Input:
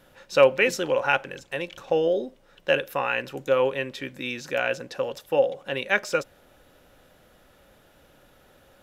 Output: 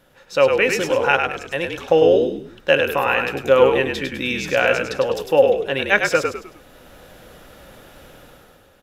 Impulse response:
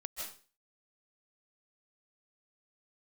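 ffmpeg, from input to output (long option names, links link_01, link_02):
-filter_complex "[0:a]dynaudnorm=framelen=130:gausssize=9:maxgain=11.5dB,asplit=5[link_01][link_02][link_03][link_04][link_05];[link_02]adelay=102,afreqshift=-47,volume=-5dB[link_06];[link_03]adelay=204,afreqshift=-94,volume=-14.4dB[link_07];[link_04]adelay=306,afreqshift=-141,volume=-23.7dB[link_08];[link_05]adelay=408,afreqshift=-188,volume=-33.1dB[link_09];[link_01][link_06][link_07][link_08][link_09]amix=inputs=5:normalize=0"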